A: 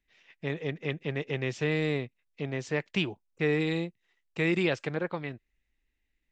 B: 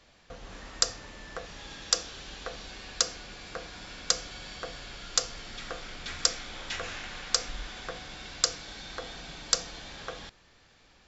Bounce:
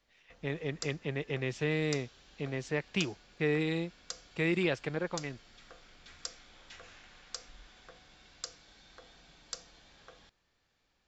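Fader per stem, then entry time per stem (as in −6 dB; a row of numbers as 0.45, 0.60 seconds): −3.0, −16.0 decibels; 0.00, 0.00 seconds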